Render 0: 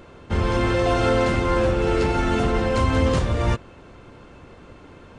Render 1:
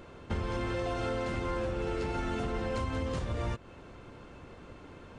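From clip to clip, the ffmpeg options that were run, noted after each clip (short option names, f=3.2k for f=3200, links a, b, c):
-af "acompressor=threshold=-25dB:ratio=10,volume=-4.5dB"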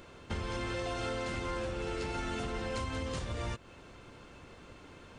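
-af "highshelf=f=2.1k:g=9,volume=-4dB"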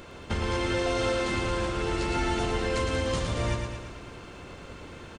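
-af "aecho=1:1:112|224|336|448|560|672|784|896:0.562|0.332|0.196|0.115|0.0681|0.0402|0.0237|0.014,volume=7dB"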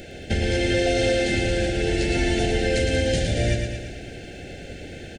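-af "asuperstop=centerf=1100:order=12:qfactor=1.6,volume=6.5dB"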